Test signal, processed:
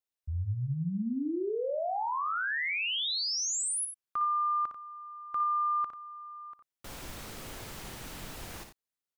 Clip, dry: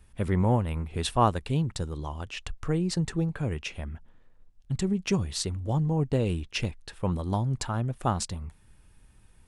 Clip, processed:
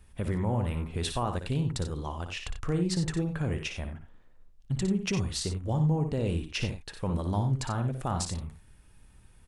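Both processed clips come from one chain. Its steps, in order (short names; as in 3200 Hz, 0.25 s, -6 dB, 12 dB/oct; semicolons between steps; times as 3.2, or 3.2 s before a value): limiter -21 dBFS; on a send: loudspeakers at several distances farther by 20 m -8 dB, 31 m -11 dB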